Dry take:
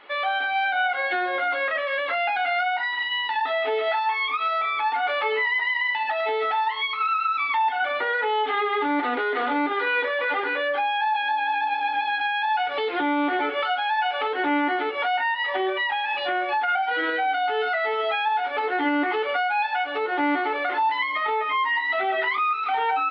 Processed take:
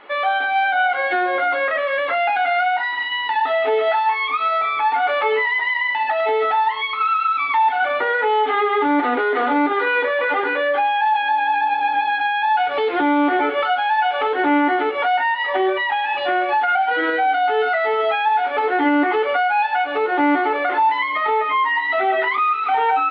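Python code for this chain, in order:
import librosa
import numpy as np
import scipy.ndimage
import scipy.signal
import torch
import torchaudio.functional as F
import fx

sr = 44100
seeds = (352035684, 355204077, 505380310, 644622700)

y = fx.high_shelf(x, sr, hz=2800.0, db=-11.0)
y = fx.echo_wet_highpass(y, sr, ms=100, feedback_pct=82, hz=4000.0, wet_db=-11.5)
y = y * 10.0 ** (7.0 / 20.0)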